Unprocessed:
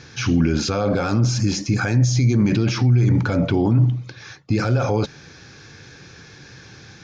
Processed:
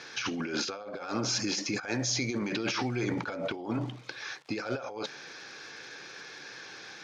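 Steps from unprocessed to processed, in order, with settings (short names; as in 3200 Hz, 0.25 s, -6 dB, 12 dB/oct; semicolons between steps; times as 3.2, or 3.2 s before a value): crackle 400/s -44 dBFS; BPF 460–6000 Hz; negative-ratio compressor -30 dBFS, ratio -0.5; gain -2 dB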